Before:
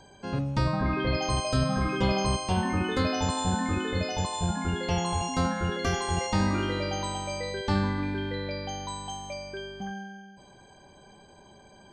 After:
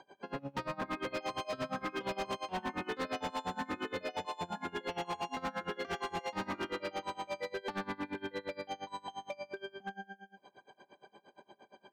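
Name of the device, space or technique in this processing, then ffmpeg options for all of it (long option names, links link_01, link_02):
helicopter radio: -af "highpass=310,lowpass=3000,aeval=exprs='val(0)*pow(10,-26*(0.5-0.5*cos(2*PI*8.6*n/s))/20)':channel_layout=same,asoftclip=type=hard:threshold=-34dB,volume=2dB"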